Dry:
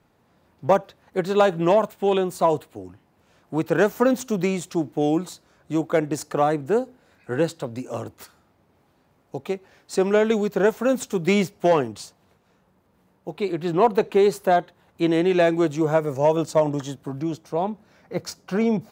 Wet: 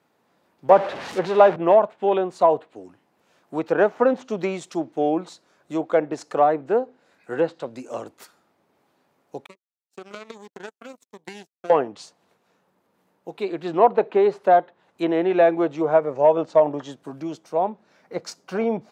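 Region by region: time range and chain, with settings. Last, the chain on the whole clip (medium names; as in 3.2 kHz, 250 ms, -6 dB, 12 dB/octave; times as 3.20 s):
0.70–1.56 s: jump at every zero crossing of -22.5 dBFS + three bands expanded up and down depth 40%
9.46–11.70 s: compression 3:1, threshold -20 dBFS + power-law waveshaper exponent 3 + Shepard-style phaser falling 1.3 Hz
whole clip: dynamic bell 680 Hz, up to +6 dB, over -30 dBFS, Q 1.1; Bessel high-pass 270 Hz, order 2; low-pass that closes with the level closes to 2.5 kHz, closed at -17 dBFS; trim -1.5 dB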